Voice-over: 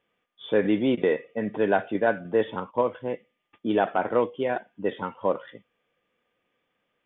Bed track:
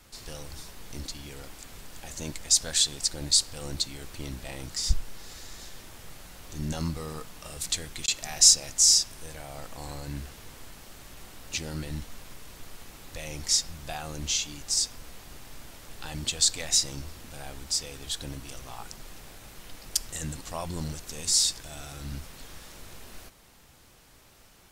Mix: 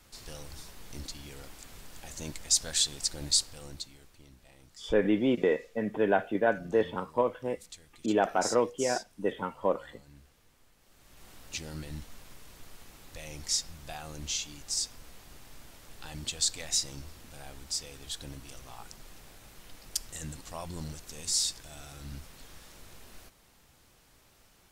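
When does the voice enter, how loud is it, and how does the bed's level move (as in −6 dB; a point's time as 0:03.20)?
4.40 s, −3.0 dB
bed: 0:03.35 −3.5 dB
0:04.26 −19 dB
0:10.76 −19 dB
0:11.30 −5.5 dB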